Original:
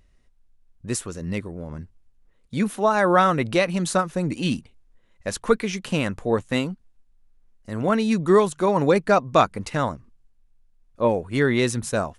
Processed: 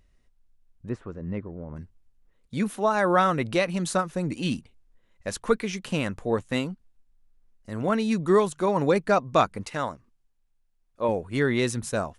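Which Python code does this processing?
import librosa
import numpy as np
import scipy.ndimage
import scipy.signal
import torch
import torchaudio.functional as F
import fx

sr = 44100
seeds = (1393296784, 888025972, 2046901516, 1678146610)

y = fx.lowpass(x, sr, hz=1400.0, slope=12, at=(0.88, 1.75), fade=0.02)
y = fx.low_shelf(y, sr, hz=270.0, db=-8.5, at=(9.63, 11.09))
y = F.gain(torch.from_numpy(y), -3.5).numpy()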